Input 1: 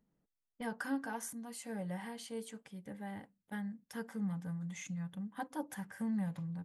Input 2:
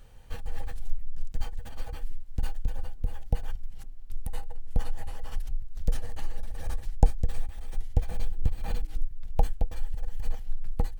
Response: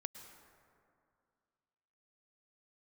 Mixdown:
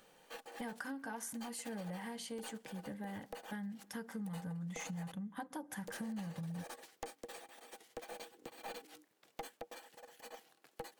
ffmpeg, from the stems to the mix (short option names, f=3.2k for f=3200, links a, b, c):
-filter_complex "[0:a]acompressor=threshold=-38dB:ratio=6,volume=2.5dB,asplit=2[a][b];[b]volume=-17dB[c];[1:a]highpass=f=310:w=0.5412,highpass=f=310:w=1.3066,aeval=exprs='(tanh(44.7*val(0)+0.25)-tanh(0.25))/44.7':c=same,volume=-1dB,asplit=3[d][e][f];[d]atrim=end=5.12,asetpts=PTS-STARTPTS,afade=t=out:st=5.116:d=0.004:c=hsin[g];[e]atrim=start=5.12:end=5.8,asetpts=PTS-STARTPTS,volume=0[h];[f]atrim=start=5.8,asetpts=PTS-STARTPTS,afade=t=in:d=0.004:c=hsin[i];[g][h][i]concat=n=3:v=0:a=1[j];[2:a]atrim=start_sample=2205[k];[c][k]afir=irnorm=-1:irlink=0[l];[a][j][l]amix=inputs=3:normalize=0,acompressor=threshold=-41dB:ratio=3"